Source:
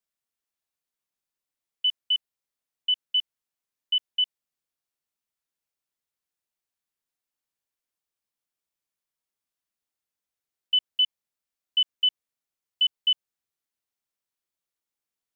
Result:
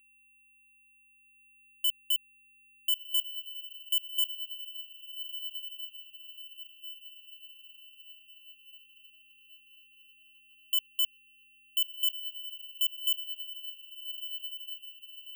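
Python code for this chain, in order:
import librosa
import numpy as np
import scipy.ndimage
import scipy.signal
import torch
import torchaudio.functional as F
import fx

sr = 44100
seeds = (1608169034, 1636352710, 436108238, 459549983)

y = fx.rider(x, sr, range_db=10, speed_s=2.0)
y = y + 10.0 ** (-63.0 / 20.0) * np.sin(2.0 * np.pi * 2700.0 * np.arange(len(y)) / sr)
y = fx.echo_diffused(y, sr, ms=1411, feedback_pct=49, wet_db=-13.5)
y = (np.kron(scipy.signal.resample_poly(y, 1, 2), np.eye(2)[0]) * 2)[:len(y)]
y = fx.slew_limit(y, sr, full_power_hz=610.0)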